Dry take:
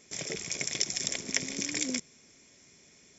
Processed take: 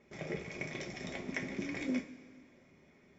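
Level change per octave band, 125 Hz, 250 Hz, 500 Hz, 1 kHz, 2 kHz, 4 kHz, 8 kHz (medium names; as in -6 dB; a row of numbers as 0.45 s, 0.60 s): +1.0 dB, +1.0 dB, 0.0 dB, 0.0 dB, -4.0 dB, -17.0 dB, no reading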